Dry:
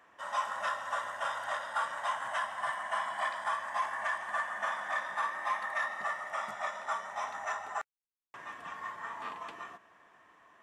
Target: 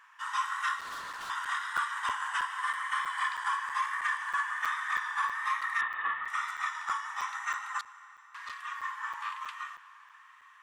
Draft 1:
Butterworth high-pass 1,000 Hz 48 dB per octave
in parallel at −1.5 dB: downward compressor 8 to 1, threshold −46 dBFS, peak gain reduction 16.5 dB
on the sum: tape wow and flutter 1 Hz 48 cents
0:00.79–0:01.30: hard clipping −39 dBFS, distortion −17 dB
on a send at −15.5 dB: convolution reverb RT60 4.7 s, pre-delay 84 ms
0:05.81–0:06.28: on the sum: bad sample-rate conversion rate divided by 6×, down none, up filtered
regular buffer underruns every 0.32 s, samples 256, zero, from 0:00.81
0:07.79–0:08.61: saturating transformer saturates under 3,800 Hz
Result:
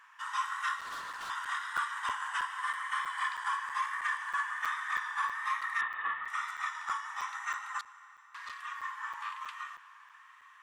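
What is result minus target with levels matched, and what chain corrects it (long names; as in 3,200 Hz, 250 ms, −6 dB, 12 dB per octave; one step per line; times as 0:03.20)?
downward compressor: peak gain reduction +9 dB
Butterworth high-pass 1,000 Hz 48 dB per octave
in parallel at −1.5 dB: downward compressor 8 to 1, threshold −35.5 dBFS, peak gain reduction 7.5 dB
on the sum: tape wow and flutter 1 Hz 48 cents
0:00.79–0:01.30: hard clipping −39 dBFS, distortion −16 dB
on a send at −15.5 dB: convolution reverb RT60 4.7 s, pre-delay 84 ms
0:05.81–0:06.28: on the sum: bad sample-rate conversion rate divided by 6×, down none, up filtered
regular buffer underruns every 0.32 s, samples 256, zero, from 0:00.81
0:07.79–0:08.61: saturating transformer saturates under 3,800 Hz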